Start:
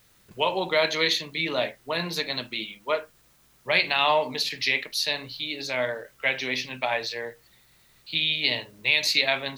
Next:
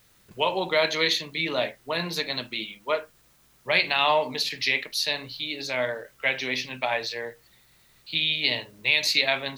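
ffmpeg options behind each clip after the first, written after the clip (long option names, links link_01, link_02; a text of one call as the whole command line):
ffmpeg -i in.wav -af anull out.wav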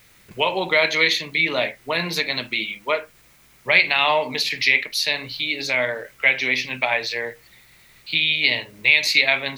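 ffmpeg -i in.wav -filter_complex "[0:a]equalizer=frequency=2200:width=2.9:gain=8,asplit=2[link_01][link_02];[link_02]acompressor=threshold=-29dB:ratio=6,volume=0dB[link_03];[link_01][link_03]amix=inputs=2:normalize=0" out.wav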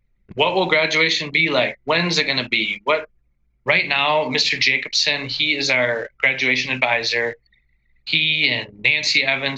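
ffmpeg -i in.wav -filter_complex "[0:a]aresample=16000,aresample=44100,acrossover=split=320[link_01][link_02];[link_02]acompressor=threshold=-21dB:ratio=6[link_03];[link_01][link_03]amix=inputs=2:normalize=0,anlmdn=0.251,volume=7dB" out.wav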